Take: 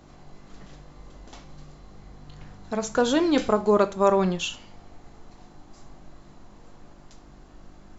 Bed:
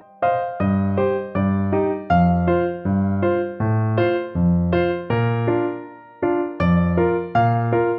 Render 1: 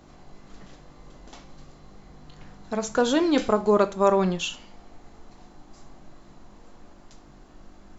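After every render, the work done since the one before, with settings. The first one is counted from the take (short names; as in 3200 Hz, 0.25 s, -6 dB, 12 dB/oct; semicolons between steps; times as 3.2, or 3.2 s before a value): de-hum 50 Hz, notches 3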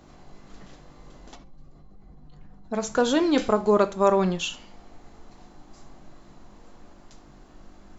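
1.35–2.74 spectral contrast raised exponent 1.5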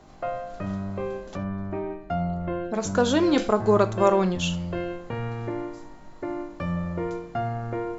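add bed -11.5 dB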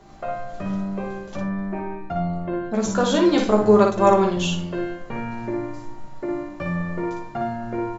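early reflections 14 ms -4.5 dB, 57 ms -4 dB; shoebox room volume 2200 m³, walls furnished, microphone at 1.2 m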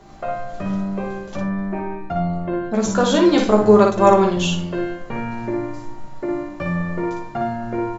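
gain +3 dB; limiter -1 dBFS, peak gain reduction 1 dB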